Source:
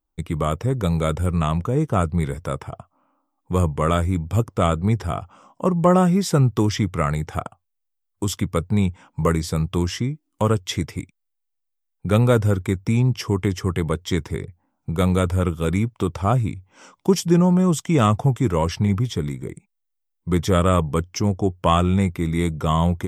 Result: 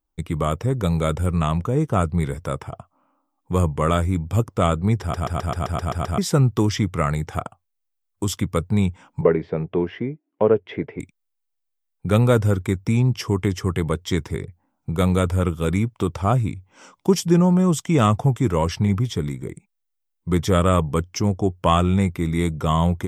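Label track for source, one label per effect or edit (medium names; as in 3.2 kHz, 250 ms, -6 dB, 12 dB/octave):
5.010000	5.010000	stutter in place 0.13 s, 9 plays
9.210000	11.000000	cabinet simulation 190–2300 Hz, peaks and dips at 420 Hz +9 dB, 650 Hz +6 dB, 1.2 kHz -9 dB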